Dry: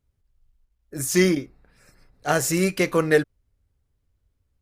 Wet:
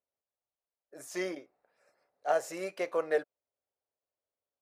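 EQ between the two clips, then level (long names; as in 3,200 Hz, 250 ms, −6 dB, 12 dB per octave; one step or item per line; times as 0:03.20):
resonant band-pass 620 Hz, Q 2.8
spectral tilt +4 dB per octave
0.0 dB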